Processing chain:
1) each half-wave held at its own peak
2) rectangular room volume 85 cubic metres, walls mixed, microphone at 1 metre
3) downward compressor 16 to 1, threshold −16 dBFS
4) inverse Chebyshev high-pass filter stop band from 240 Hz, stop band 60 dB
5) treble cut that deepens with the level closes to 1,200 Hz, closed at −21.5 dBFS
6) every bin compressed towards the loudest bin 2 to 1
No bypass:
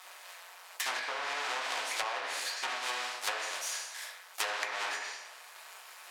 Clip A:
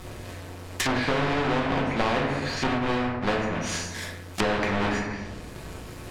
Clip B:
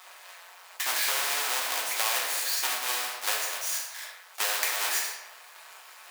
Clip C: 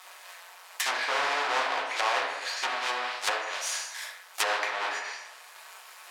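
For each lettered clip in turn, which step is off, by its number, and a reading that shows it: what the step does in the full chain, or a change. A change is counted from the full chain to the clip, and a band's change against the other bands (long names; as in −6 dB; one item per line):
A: 4, 250 Hz band +27.0 dB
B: 5, 8 kHz band +8.0 dB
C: 3, average gain reduction 3.0 dB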